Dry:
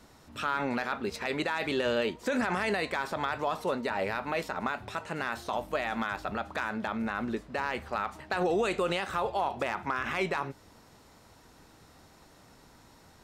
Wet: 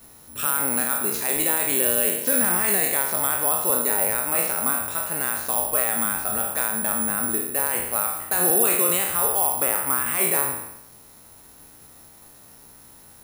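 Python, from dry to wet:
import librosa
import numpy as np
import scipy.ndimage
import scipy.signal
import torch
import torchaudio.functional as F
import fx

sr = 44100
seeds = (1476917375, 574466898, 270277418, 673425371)

y = fx.spec_trails(x, sr, decay_s=0.9)
y = (np.kron(y[::4], np.eye(4)[0]) * 4)[:len(y)]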